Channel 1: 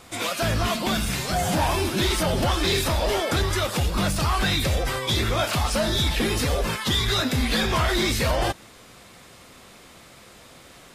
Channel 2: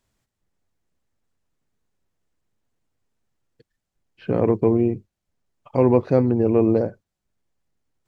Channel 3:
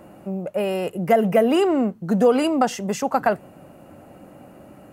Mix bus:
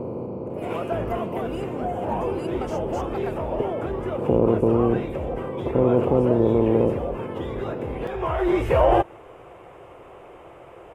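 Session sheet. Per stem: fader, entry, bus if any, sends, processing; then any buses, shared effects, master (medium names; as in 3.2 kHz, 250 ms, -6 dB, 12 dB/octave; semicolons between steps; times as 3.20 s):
+1.0 dB, 0.50 s, no send, FFT filter 140 Hz 0 dB, 230 Hz -10 dB, 350 Hz +9 dB, 880 Hz +7 dB, 1.8 kHz -6 dB, 2.9 kHz -5 dB, 4.1 kHz -28 dB, 7.7 kHz -20 dB; auto duck -11 dB, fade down 1.25 s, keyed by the second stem
-5.5 dB, 0.00 s, no send, spectral levelling over time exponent 0.2; boxcar filter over 25 samples
-16.0 dB, 0.00 s, no send, none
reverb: none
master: none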